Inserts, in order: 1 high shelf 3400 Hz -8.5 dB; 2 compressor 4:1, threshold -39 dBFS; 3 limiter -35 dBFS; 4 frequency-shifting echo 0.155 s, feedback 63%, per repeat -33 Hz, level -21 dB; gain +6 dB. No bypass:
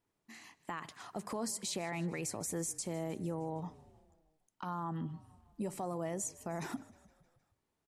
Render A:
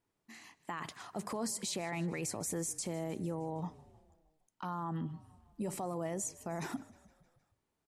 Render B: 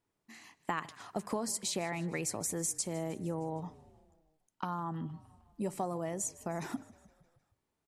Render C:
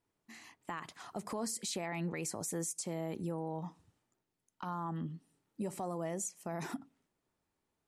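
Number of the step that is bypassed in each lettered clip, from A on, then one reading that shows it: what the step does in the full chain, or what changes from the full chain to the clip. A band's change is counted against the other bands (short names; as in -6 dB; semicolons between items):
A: 2, mean gain reduction 5.0 dB; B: 3, crest factor change +5.5 dB; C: 4, echo-to-direct -19.0 dB to none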